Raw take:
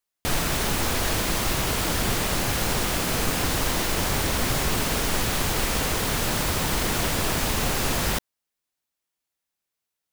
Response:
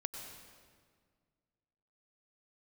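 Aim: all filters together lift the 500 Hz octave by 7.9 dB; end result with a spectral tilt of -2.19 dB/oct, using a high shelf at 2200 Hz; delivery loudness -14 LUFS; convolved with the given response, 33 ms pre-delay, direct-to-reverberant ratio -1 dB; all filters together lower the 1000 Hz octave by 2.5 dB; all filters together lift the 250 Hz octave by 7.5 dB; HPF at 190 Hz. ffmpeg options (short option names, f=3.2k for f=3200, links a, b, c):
-filter_complex "[0:a]highpass=190,equalizer=f=250:t=o:g=9,equalizer=f=500:t=o:g=9,equalizer=f=1k:t=o:g=-9,highshelf=f=2.2k:g=7.5,asplit=2[a][b];[1:a]atrim=start_sample=2205,adelay=33[c];[b][c]afir=irnorm=-1:irlink=0,volume=1.5dB[d];[a][d]amix=inputs=2:normalize=0,volume=1dB"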